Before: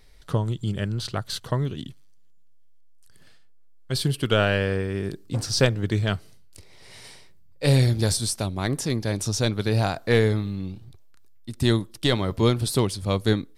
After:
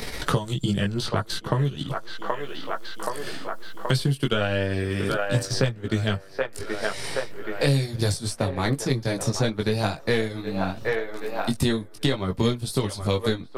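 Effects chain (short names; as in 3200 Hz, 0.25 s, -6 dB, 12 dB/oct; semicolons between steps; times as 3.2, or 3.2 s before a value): chorus voices 4, 0.19 Hz, delay 18 ms, depth 4.5 ms; on a send: band-limited delay 0.776 s, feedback 36%, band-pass 920 Hz, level -7.5 dB; on the sum: transient shaper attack +2 dB, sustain -6 dB; three-band squash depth 100%; gain +2 dB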